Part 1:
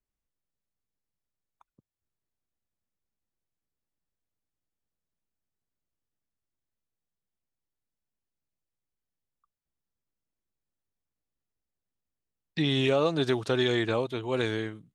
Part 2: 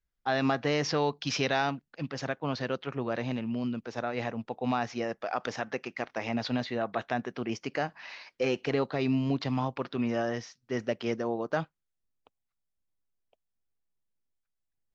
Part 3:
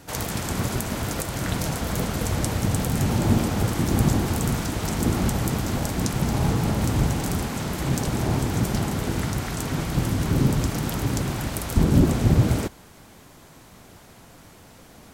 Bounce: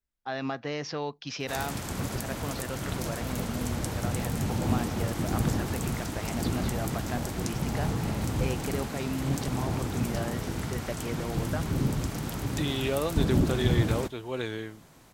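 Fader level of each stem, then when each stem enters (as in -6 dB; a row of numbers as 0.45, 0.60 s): -4.5, -5.5, -7.0 dB; 0.00, 0.00, 1.40 s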